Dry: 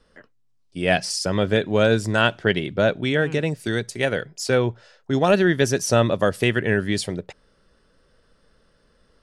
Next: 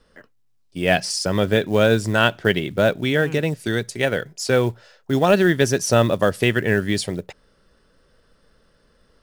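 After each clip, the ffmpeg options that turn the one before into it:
-af "acrusher=bits=7:mode=log:mix=0:aa=0.000001,volume=1.19"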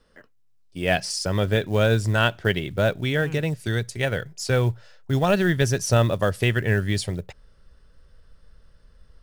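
-af "asubboost=boost=6.5:cutoff=110,volume=0.668"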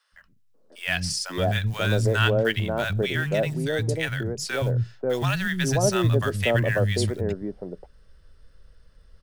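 -filter_complex "[0:a]acrossover=split=200|910[s0][s1][s2];[s0]adelay=120[s3];[s1]adelay=540[s4];[s3][s4][s2]amix=inputs=3:normalize=0"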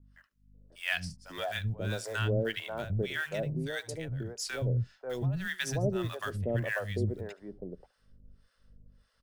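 -filter_complex "[0:a]aecho=1:1:73:0.0841,aeval=exprs='val(0)+0.00251*(sin(2*PI*50*n/s)+sin(2*PI*2*50*n/s)/2+sin(2*PI*3*50*n/s)/3+sin(2*PI*4*50*n/s)/4+sin(2*PI*5*50*n/s)/5)':c=same,acrossover=split=600[s0][s1];[s0]aeval=exprs='val(0)*(1-1/2+1/2*cos(2*PI*1.7*n/s))':c=same[s2];[s1]aeval=exprs='val(0)*(1-1/2-1/2*cos(2*PI*1.7*n/s))':c=same[s3];[s2][s3]amix=inputs=2:normalize=0,volume=0.596"

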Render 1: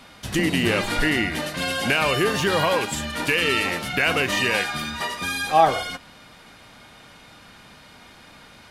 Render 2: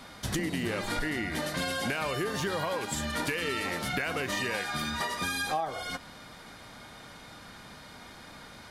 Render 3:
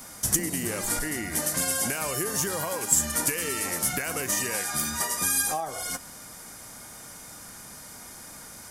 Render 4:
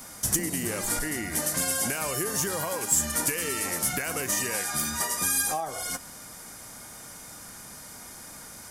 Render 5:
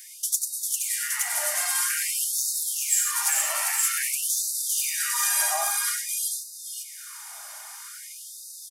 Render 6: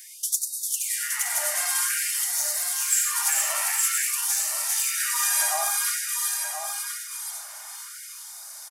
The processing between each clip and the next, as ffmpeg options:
-af "equalizer=f=2700:t=o:w=0.37:g=-7,acompressor=threshold=0.0398:ratio=10"
-af "highshelf=f=4500:g=-6,aexciter=amount=12:drive=4.9:freq=5700"
-af "asoftclip=type=tanh:threshold=0.224"
-af "aecho=1:1:90|397|471|867:0.562|0.668|0.473|0.708,afftfilt=real='re*gte(b*sr/1024,560*pow(3700/560,0.5+0.5*sin(2*PI*0.5*pts/sr)))':imag='im*gte(b*sr/1024,560*pow(3700/560,0.5+0.5*sin(2*PI*0.5*pts/sr)))':win_size=1024:overlap=0.75"
-af "aecho=1:1:1023:0.447"

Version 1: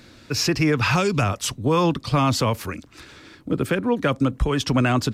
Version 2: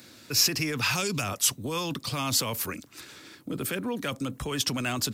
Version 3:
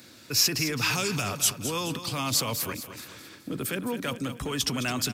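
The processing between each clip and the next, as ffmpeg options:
-filter_complex "[0:a]highpass=120,aemphasis=mode=production:type=50fm,acrossover=split=2200[s0][s1];[s0]alimiter=limit=0.0944:level=0:latency=1:release=15[s2];[s2][s1]amix=inputs=2:normalize=0,volume=0.631"
-af "aecho=1:1:213|426|639|852|1065:0.282|0.13|0.0596|0.0274|0.0126"

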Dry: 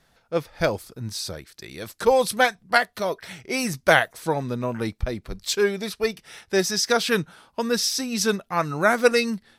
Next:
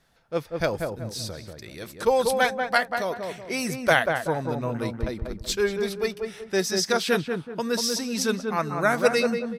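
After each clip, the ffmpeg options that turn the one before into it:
-filter_complex "[0:a]asplit=2[s0][s1];[s1]adelay=189,lowpass=f=1200:p=1,volume=0.668,asplit=2[s2][s3];[s3]adelay=189,lowpass=f=1200:p=1,volume=0.39,asplit=2[s4][s5];[s5]adelay=189,lowpass=f=1200:p=1,volume=0.39,asplit=2[s6][s7];[s7]adelay=189,lowpass=f=1200:p=1,volume=0.39,asplit=2[s8][s9];[s9]adelay=189,lowpass=f=1200:p=1,volume=0.39[s10];[s0][s2][s4][s6][s8][s10]amix=inputs=6:normalize=0,volume=0.708"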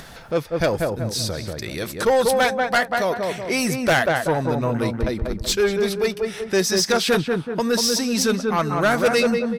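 -filter_complex "[0:a]asplit=2[s0][s1];[s1]acompressor=mode=upward:threshold=0.0708:ratio=2.5,volume=0.794[s2];[s0][s2]amix=inputs=2:normalize=0,asoftclip=type=tanh:threshold=0.2,volume=1.26"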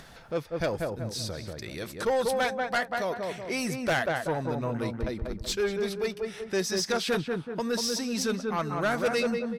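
-af "highshelf=f=11000:g=-6,volume=0.376"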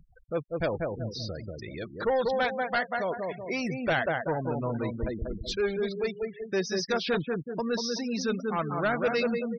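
-filter_complex "[0:a]acrossover=split=6000[s0][s1];[s1]acompressor=threshold=0.00178:ratio=4:attack=1:release=60[s2];[s0][s2]amix=inputs=2:normalize=0,afftfilt=real='re*gte(hypot(re,im),0.0178)':imag='im*gte(hypot(re,im),0.0178)':win_size=1024:overlap=0.75"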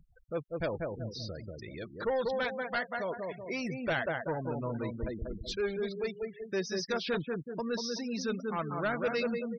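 -af "bandreject=f=750:w=12,volume=0.596"

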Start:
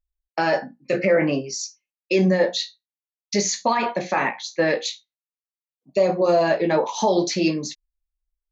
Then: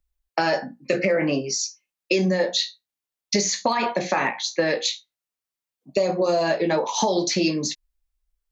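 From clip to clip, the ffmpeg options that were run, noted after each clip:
-filter_complex "[0:a]acrossover=split=110|4100[s0][s1][s2];[s0]acompressor=threshold=0.00126:ratio=4[s3];[s1]acompressor=threshold=0.0501:ratio=4[s4];[s2]acompressor=threshold=0.0282:ratio=4[s5];[s3][s4][s5]amix=inputs=3:normalize=0,volume=2"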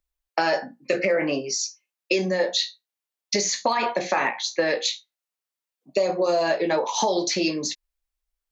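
-af "bass=f=250:g=-9,treble=f=4000:g=-1"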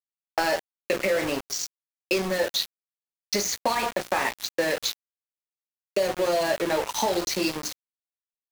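-af "aeval=exprs='val(0)*gte(abs(val(0)),0.0562)':c=same,volume=0.794"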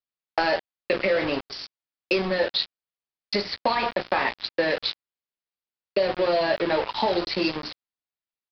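-af "aresample=11025,aresample=44100,volume=1.19"

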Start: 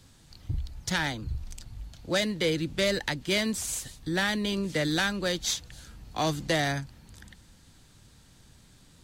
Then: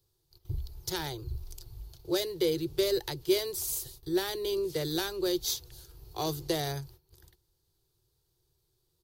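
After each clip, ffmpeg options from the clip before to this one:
-af "agate=range=0.158:threshold=0.00447:ratio=16:detection=peak,firequalizer=gain_entry='entry(150,0);entry(220,-30);entry(360,12);entry(570,-4);entry(890,-1);entry(1800,-11);entry(4500,3);entry(7700,-3);entry(13000,15)':delay=0.05:min_phase=1,volume=0.668"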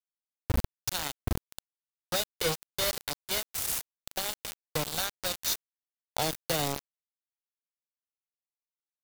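-filter_complex "[0:a]aecho=1:1:1.4:0.94,asplit=2[s0][s1];[s1]acompressor=threshold=0.0126:ratio=8,volume=1.41[s2];[s0][s2]amix=inputs=2:normalize=0,acrusher=bits=3:mix=0:aa=0.000001,volume=0.631"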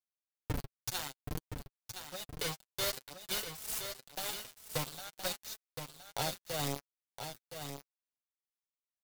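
-af "tremolo=f=2.1:d=0.74,flanger=delay=4.6:depth=3.4:regen=17:speed=0.54:shape=sinusoidal,aecho=1:1:1018:0.398,volume=0.891"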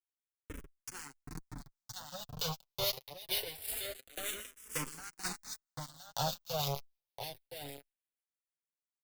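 -filter_complex "[0:a]dynaudnorm=f=280:g=11:m=2.66,acrossover=split=1600[s0][s1];[s0]aeval=exprs='val(0)*(1-0.5/2+0.5/2*cos(2*PI*6.4*n/s))':c=same[s2];[s1]aeval=exprs='val(0)*(1-0.5/2-0.5/2*cos(2*PI*6.4*n/s))':c=same[s3];[s2][s3]amix=inputs=2:normalize=0,asplit=2[s4][s5];[s5]afreqshift=-0.25[s6];[s4][s6]amix=inputs=2:normalize=1,volume=0.668"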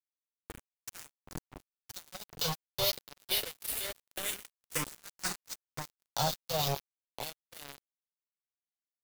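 -af "acrusher=bits=5:mix=0:aa=0.5,volume=1.5"

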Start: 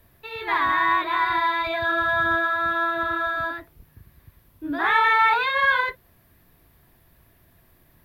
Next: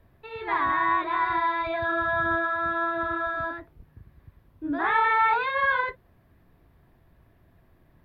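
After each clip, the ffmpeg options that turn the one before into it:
-af "lowpass=f=1200:p=1"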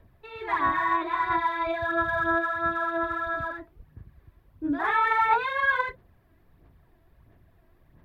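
-af "aphaser=in_gain=1:out_gain=1:delay=3.1:decay=0.45:speed=1.5:type=sinusoidal,volume=0.75"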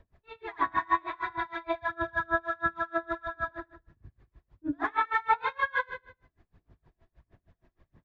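-filter_complex "[0:a]asplit=2[s0][s1];[s1]aecho=0:1:77|154|231|308|385:0.501|0.221|0.097|0.0427|0.0188[s2];[s0][s2]amix=inputs=2:normalize=0,aresample=16000,aresample=44100,aeval=exprs='val(0)*pow(10,-30*(0.5-0.5*cos(2*PI*6.4*n/s))/20)':c=same"

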